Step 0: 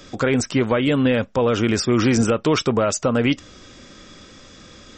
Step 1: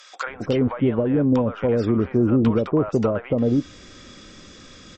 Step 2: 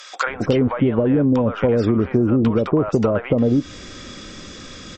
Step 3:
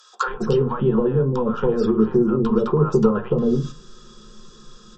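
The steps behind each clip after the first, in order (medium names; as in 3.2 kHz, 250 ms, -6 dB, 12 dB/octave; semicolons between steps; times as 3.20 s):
low-pass that closes with the level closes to 770 Hz, closed at -14 dBFS; bands offset in time highs, lows 270 ms, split 760 Hz
compression, threshold -21 dBFS, peak gain reduction 8 dB; trim +7.5 dB
gate -29 dBFS, range -9 dB; static phaser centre 430 Hz, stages 8; reverberation RT60 0.25 s, pre-delay 3 ms, DRR 4 dB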